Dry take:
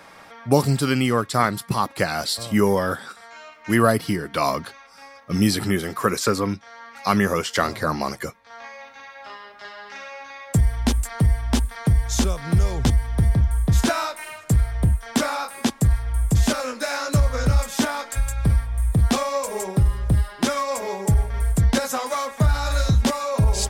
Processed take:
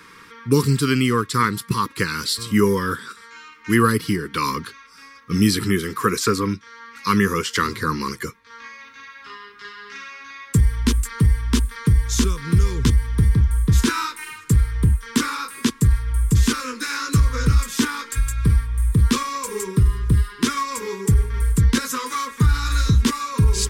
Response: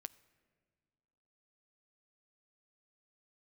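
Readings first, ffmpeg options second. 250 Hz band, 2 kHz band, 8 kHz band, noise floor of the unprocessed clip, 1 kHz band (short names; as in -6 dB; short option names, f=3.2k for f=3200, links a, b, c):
+2.0 dB, +2.0 dB, +2.0 dB, -46 dBFS, 0.0 dB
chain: -af "asuperstop=centerf=680:order=8:qfactor=1.4,volume=2dB"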